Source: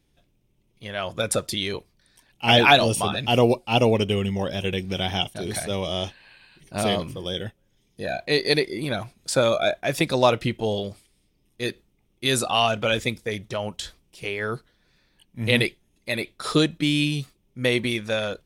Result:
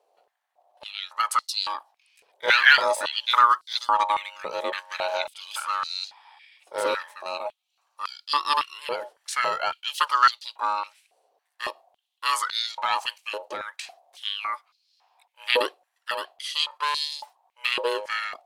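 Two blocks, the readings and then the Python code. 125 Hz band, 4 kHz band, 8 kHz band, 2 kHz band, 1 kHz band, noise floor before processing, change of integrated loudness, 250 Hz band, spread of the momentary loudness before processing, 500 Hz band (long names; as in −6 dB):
below −35 dB, −2.0 dB, −5.5 dB, +2.0 dB, +3.5 dB, −67 dBFS, −1.5 dB, −22.5 dB, 12 LU, −8.5 dB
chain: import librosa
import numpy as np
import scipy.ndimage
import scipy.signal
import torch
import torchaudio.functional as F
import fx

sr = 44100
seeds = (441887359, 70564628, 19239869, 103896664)

y = x * np.sin(2.0 * np.pi * 730.0 * np.arange(len(x)) / sr)
y = fx.filter_held_highpass(y, sr, hz=3.6, low_hz=470.0, high_hz=4400.0)
y = y * 10.0 ** (-3.0 / 20.0)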